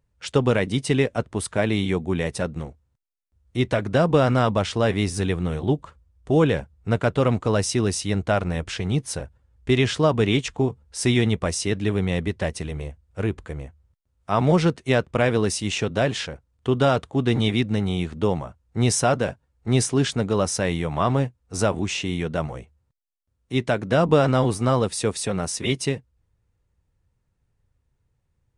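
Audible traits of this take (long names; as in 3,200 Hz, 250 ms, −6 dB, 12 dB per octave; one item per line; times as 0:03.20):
background noise floor −72 dBFS
spectral slope −5.5 dB per octave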